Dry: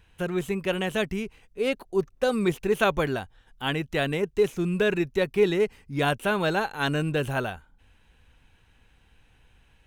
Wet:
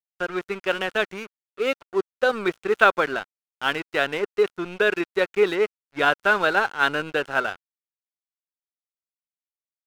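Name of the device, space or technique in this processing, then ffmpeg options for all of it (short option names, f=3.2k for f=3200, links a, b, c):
pocket radio on a weak battery: -af "highpass=360,lowpass=4.3k,aeval=exprs='sgn(val(0))*max(abs(val(0))-0.00944,0)':c=same,equalizer=f=1.4k:t=o:w=0.34:g=9,volume=4.5dB"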